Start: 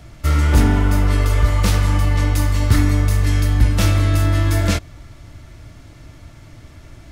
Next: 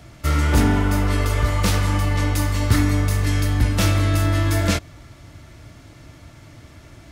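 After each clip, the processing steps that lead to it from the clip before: HPF 91 Hz 6 dB/oct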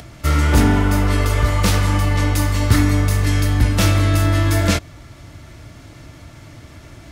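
upward compressor, threshold -38 dBFS; gain +3 dB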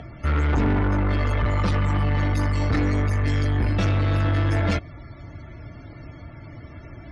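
loudest bins only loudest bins 64; air absorption 55 m; soft clip -17.5 dBFS, distortion -10 dB

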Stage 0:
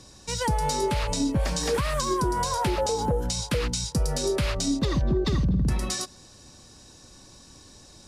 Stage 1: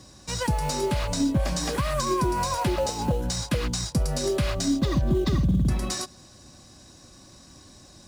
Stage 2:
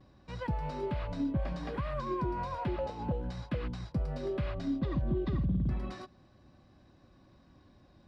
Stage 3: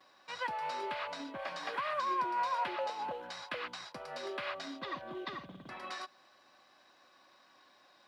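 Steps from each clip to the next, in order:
in parallel at -11 dB: sample-rate reducer 3500 Hz, jitter 20%; on the sum: notch comb 450 Hz
vibrato 0.35 Hz 17 cents; air absorption 390 m; gain -8 dB
HPF 940 Hz 12 dB/oct; gain +8 dB

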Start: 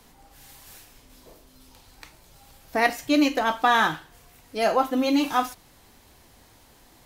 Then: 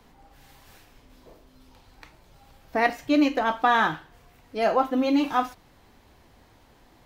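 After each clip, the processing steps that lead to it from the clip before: bell 11000 Hz -13 dB 2 oct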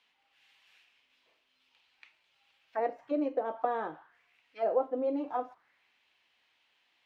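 auto-wah 490–2900 Hz, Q 2.8, down, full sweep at -20 dBFS; gain -2 dB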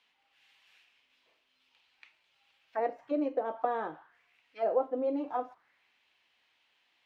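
nothing audible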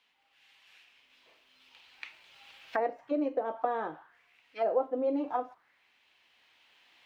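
recorder AGC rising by 6.2 dB/s

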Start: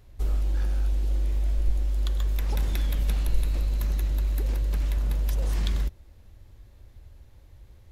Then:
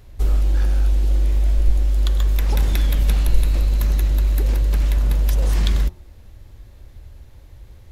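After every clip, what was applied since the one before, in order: de-hum 89.73 Hz, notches 14; gain +8 dB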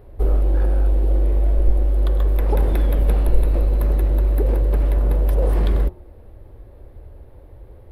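EQ curve 200 Hz 0 dB, 450 Hz +11 dB, 4600 Hz -14 dB, 6700 Hz -23 dB, 9600 Hz -7 dB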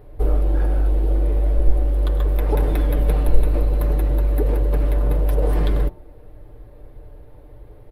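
comb 6.7 ms, depth 53%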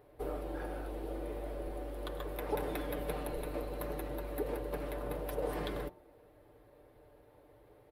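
HPF 430 Hz 6 dB/oct; gain -7.5 dB

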